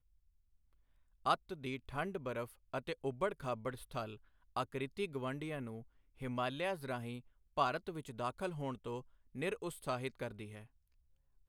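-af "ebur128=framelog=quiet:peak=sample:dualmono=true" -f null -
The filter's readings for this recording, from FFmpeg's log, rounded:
Integrated loudness:
  I:         -38.0 LUFS
  Threshold: -48.3 LUFS
Loudness range:
  LRA:         2.3 LU
  Threshold: -58.4 LUFS
  LRA low:   -39.7 LUFS
  LRA high:  -37.4 LUFS
Sample peak:
  Peak:      -16.6 dBFS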